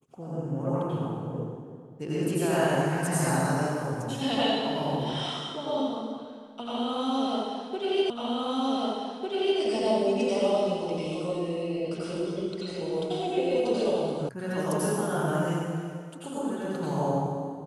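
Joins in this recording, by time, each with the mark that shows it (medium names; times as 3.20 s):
8.10 s: repeat of the last 1.5 s
14.29 s: sound stops dead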